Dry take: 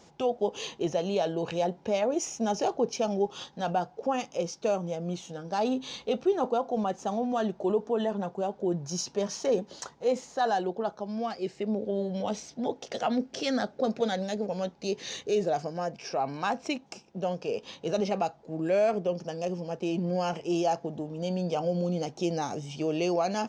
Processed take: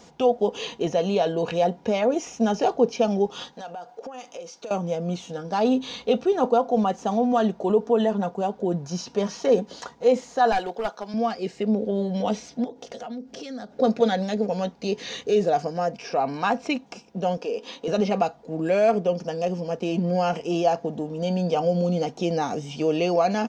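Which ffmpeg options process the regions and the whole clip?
ffmpeg -i in.wav -filter_complex "[0:a]asettb=1/sr,asplit=3[link_01][link_02][link_03];[link_01]atrim=end=3.534[link_04];[link_02]atrim=start=3.53:end=4.71,asetpts=PTS-STARTPTS,afade=type=in:duration=0.004:curve=qsin,afade=type=out:start_time=1.176:duration=0.004:curve=qsin,bass=frequency=250:gain=-15,treble=frequency=4000:gain=2,bandreject=frequency=5200:width=15,acompressor=threshold=-39dB:ratio=10:attack=3.2:release=140:knee=1:detection=peak[link_05];[link_03]atrim=start=4.706[link_06];[link_04][link_05]acrossfade=duration=0.004:curve1=hsin:curve2=qsin[link_07];[link_07][link_06]acrossfade=duration=0.004:curve1=qsin:curve2=hsin,asettb=1/sr,asplit=3[link_08][link_09][link_10];[link_08]atrim=end=10.524[link_11];[link_09]atrim=start=10.52:end=11.14,asetpts=PTS-STARTPTS,afade=type=in:duration=0.004:curve=qsin,afade=type=out:start_time=0.616:duration=0.004:curve=qsin,highpass=frequency=1100:poles=1,aeval=exprs='clip(val(0),-1,0.0178)':channel_layout=same,acontrast=27[link_12];[link_10]atrim=start=11.136[link_13];[link_11][link_12]acrossfade=duration=0.004:curve1=hsin:curve2=qsin[link_14];[link_14][link_13]acrossfade=duration=0.004:curve1=qsin:curve2=hsin,asettb=1/sr,asplit=3[link_15][link_16][link_17];[link_15]atrim=end=12.644[link_18];[link_16]atrim=start=12.64:end=13.72,asetpts=PTS-STARTPTS,afade=type=in:duration=0.004:curve=qsin,afade=type=out:start_time=1.076:duration=0.004:curve=qsin,equalizer=frequency=2000:width=0.53:gain=-4.5,acompressor=threshold=-39dB:ratio=8:attack=3.2:release=140:knee=1:detection=peak[link_19];[link_17]atrim=start=13.716[link_20];[link_18][link_19]acrossfade=duration=0.004:curve1=hsin:curve2=qsin[link_21];[link_21][link_20]acrossfade=duration=0.004:curve1=qsin:curve2=hsin,asettb=1/sr,asplit=3[link_22][link_23][link_24];[link_22]atrim=end=17.374[link_25];[link_23]atrim=start=17.37:end=17.88,asetpts=PTS-STARTPTS,afade=type=in:duration=0.004:curve=qsin,afade=type=out:start_time=0.506:duration=0.004:curve=qsin,acompressor=threshold=-36dB:ratio=2:attack=3.2:release=140:knee=1:detection=peak,lowshelf=frequency=200:width_type=q:width=1.5:gain=-9.5[link_26];[link_24]atrim=start=17.876[link_27];[link_25][link_26]acrossfade=duration=0.004:curve1=hsin:curve2=qsin[link_28];[link_28][link_27]acrossfade=duration=0.004:curve1=qsin:curve2=hsin,acrossover=split=4300[link_29][link_30];[link_30]acompressor=threshold=-51dB:ratio=4:attack=1:release=60[link_31];[link_29][link_31]amix=inputs=2:normalize=0,aecho=1:1:4.2:0.36,volume=5.5dB" out.wav

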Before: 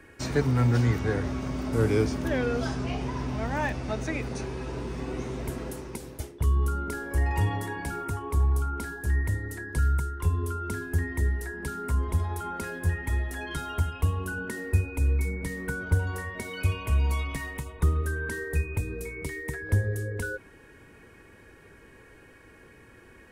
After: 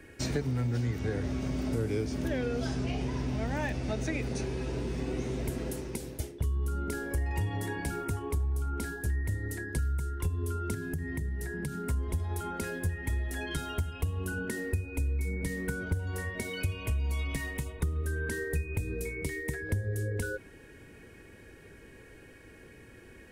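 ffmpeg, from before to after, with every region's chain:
ffmpeg -i in.wav -filter_complex "[0:a]asettb=1/sr,asplit=3[link_01][link_02][link_03];[link_01]atrim=end=10.744[link_04];[link_02]atrim=start=10.74:end=11.88,asetpts=PTS-STARTPTS,afade=type=in:duration=0.004:curve=qsin,afade=type=out:start_time=1.136:duration=0.004:curve=qsin,equalizer=frequency=150:width=2.2:gain=13.5,acompressor=threshold=-32dB:ratio=5:attack=3.2:release=140:knee=1:detection=peak[link_05];[link_03]atrim=start=11.876[link_06];[link_04][link_05]acrossfade=duration=0.004:curve1=hsin:curve2=qsin[link_07];[link_07][link_06]acrossfade=duration=0.004:curve1=qsin:curve2=hsin,equalizer=frequency=1100:width_type=o:width=1:gain=-8,acompressor=threshold=-29dB:ratio=6,volume=1.5dB" out.wav

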